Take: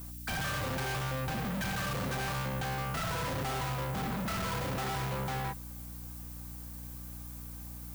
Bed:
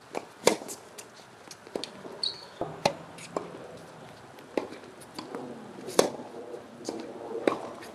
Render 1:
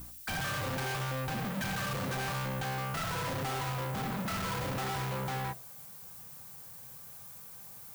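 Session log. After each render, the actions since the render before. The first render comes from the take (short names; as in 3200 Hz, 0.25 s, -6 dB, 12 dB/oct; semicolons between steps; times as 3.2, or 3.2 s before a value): de-hum 60 Hz, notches 12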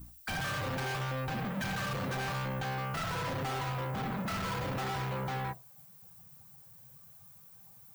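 denoiser 11 dB, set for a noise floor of -49 dBFS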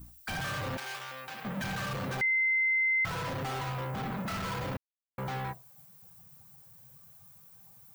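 0.77–1.45 HPF 1400 Hz 6 dB/oct; 2.21–3.05 bleep 2070 Hz -24 dBFS; 4.77–5.18 mute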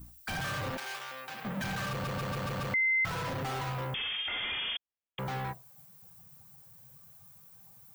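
0.7–1.29 bell 110 Hz -12 dB 0.75 oct; 1.9 stutter in place 0.14 s, 6 plays; 3.94–5.19 inverted band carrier 3400 Hz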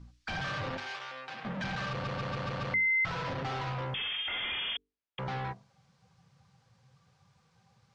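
LPF 5300 Hz 24 dB/oct; notches 50/100/150/200/250/300/350/400/450 Hz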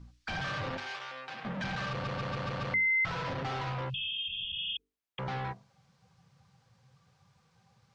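3.92–4.8 spectral repair 210–2500 Hz after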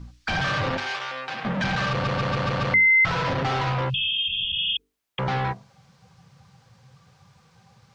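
gain +10.5 dB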